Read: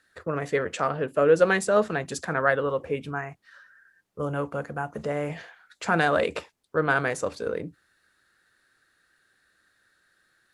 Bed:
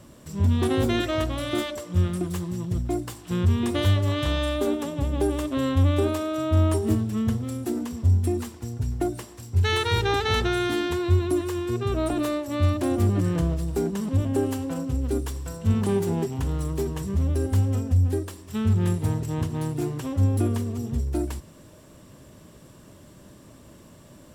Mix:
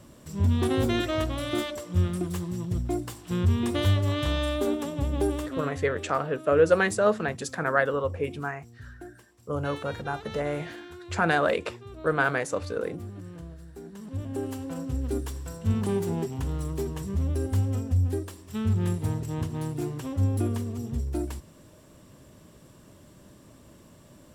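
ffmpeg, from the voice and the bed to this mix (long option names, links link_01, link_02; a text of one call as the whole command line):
ffmpeg -i stem1.wav -i stem2.wav -filter_complex "[0:a]adelay=5300,volume=-1dB[link_01];[1:a]volume=12.5dB,afade=type=out:start_time=5.28:duration=0.49:silence=0.158489,afade=type=in:start_time=13.83:duration=1.13:silence=0.188365[link_02];[link_01][link_02]amix=inputs=2:normalize=0" out.wav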